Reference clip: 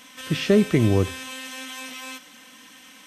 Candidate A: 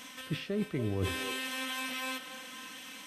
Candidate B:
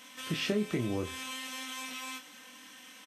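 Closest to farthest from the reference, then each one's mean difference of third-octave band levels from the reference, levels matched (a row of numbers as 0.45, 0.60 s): B, A; 5.5, 9.0 dB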